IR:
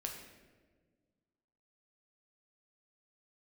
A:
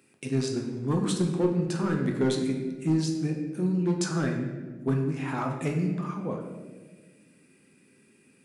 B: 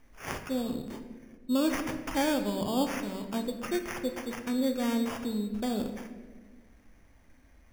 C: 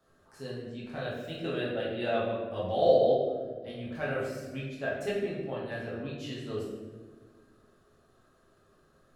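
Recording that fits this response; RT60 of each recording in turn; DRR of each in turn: A; 1.5 s, 1.5 s, 1.5 s; 1.0 dB, 5.5 dB, -7.0 dB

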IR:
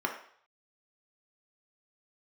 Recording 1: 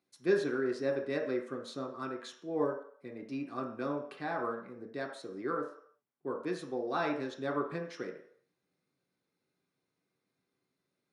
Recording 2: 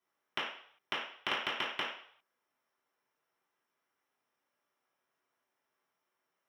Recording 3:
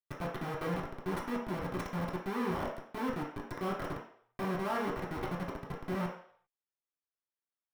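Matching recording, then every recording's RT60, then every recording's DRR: 1; 0.55 s, 0.55 s, 0.55 s; 0.5 dB, -13.0 dB, -6.5 dB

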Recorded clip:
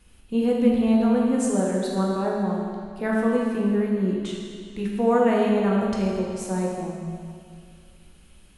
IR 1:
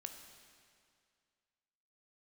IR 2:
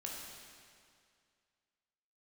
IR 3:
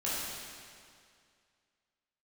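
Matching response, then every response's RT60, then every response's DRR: 2; 2.2 s, 2.2 s, 2.2 s; 5.0 dB, -2.5 dB, -9.0 dB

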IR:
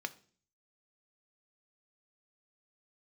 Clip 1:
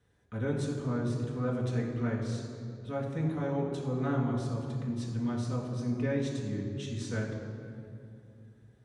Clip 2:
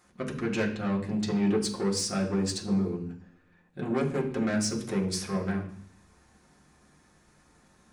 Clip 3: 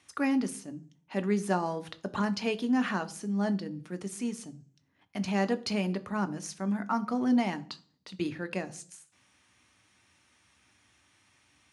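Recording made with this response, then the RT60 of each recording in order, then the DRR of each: 3; 2.5 s, 0.60 s, 0.45 s; -3.5 dB, -3.0 dB, 10.5 dB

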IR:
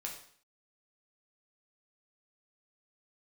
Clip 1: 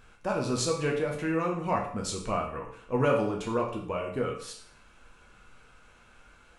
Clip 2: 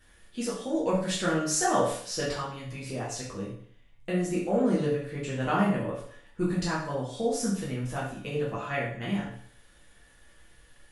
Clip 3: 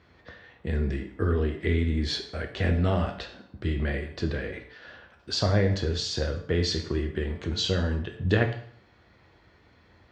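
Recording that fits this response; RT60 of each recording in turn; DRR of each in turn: 1; 0.55 s, 0.55 s, 0.55 s; -1.0 dB, -7.5 dB, 3.0 dB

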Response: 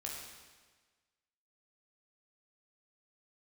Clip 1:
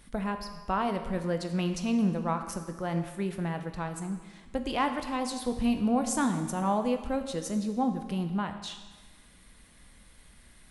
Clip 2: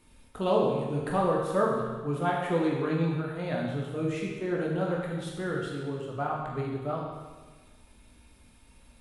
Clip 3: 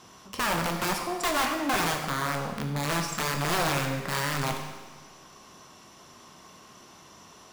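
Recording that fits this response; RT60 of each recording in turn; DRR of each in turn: 2; 1.4 s, 1.4 s, 1.4 s; 6.5 dB, -3.0 dB, 2.5 dB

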